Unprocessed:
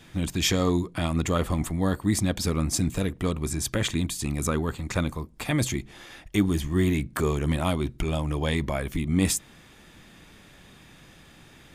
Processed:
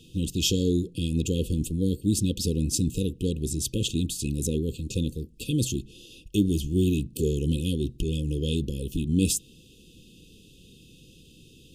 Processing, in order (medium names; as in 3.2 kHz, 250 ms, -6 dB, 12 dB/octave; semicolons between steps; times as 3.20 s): brick-wall FIR band-stop 530–2500 Hz